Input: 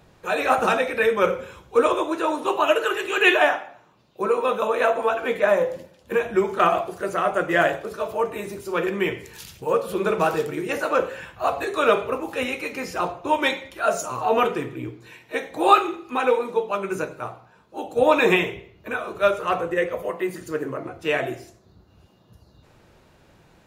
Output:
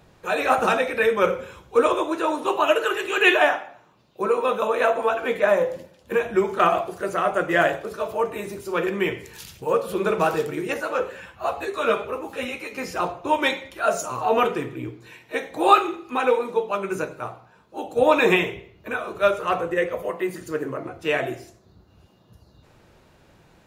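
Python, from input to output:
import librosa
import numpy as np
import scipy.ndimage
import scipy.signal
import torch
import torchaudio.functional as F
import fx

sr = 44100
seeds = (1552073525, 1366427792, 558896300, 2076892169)

y = fx.ensemble(x, sr, at=(10.74, 12.78))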